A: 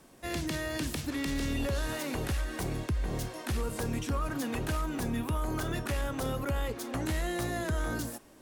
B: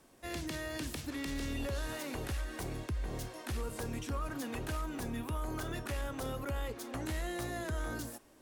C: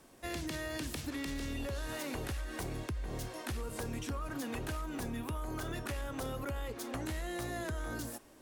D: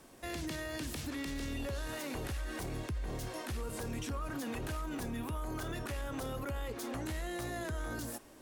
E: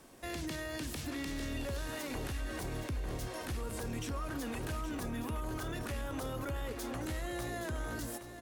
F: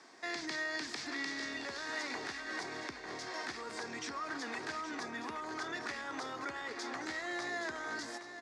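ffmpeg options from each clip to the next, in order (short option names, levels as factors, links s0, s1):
-af "equalizer=f=170:t=o:w=0.77:g=-4,volume=0.562"
-af "acompressor=threshold=0.0126:ratio=6,volume=1.41"
-af "alimiter=level_in=3.16:limit=0.0631:level=0:latency=1:release=20,volume=0.316,volume=1.33"
-af "aecho=1:1:820:0.316"
-af "highpass=430,equalizer=f=540:t=q:w=4:g=-10,equalizer=f=1900:t=q:w=4:g=6,equalizer=f=2900:t=q:w=4:g=-8,equalizer=f=4800:t=q:w=4:g=5,lowpass=f=6400:w=0.5412,lowpass=f=6400:w=1.3066,volume=1.5"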